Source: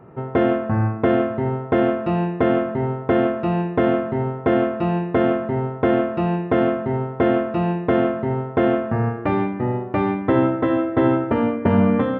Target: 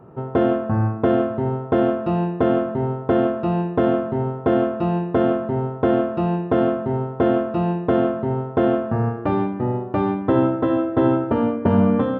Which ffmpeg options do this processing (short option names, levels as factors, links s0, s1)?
-af "equalizer=f=2100:t=o:w=0.55:g=-10.5"